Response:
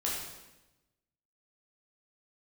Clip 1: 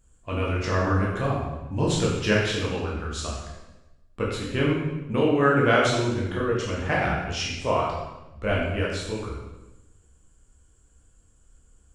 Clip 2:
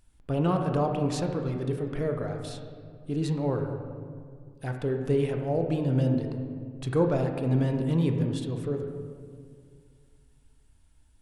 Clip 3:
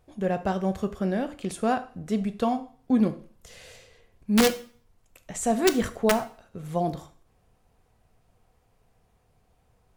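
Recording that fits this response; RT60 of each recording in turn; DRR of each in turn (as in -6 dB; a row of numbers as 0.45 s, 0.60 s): 1; 1.0 s, 2.1 s, 0.45 s; -5.5 dB, 4.0 dB, 9.0 dB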